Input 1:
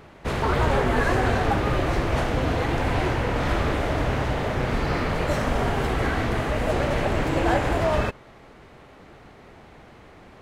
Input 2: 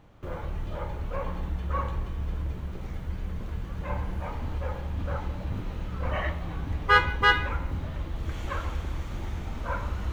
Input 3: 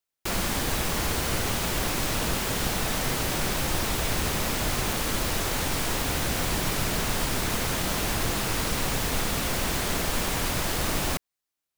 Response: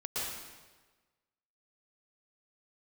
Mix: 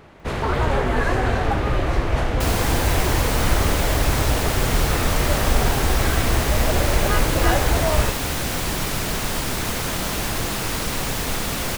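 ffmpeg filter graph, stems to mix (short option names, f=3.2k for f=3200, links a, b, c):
-filter_complex "[0:a]asubboost=boost=2.5:cutoff=97,volume=0.5dB[a];[1:a]acompressor=mode=upward:threshold=-33dB:ratio=2.5,adelay=200,volume=-8dB[b];[2:a]acontrast=39,adelay=2150,volume=-3dB[c];[a][b][c]amix=inputs=3:normalize=0"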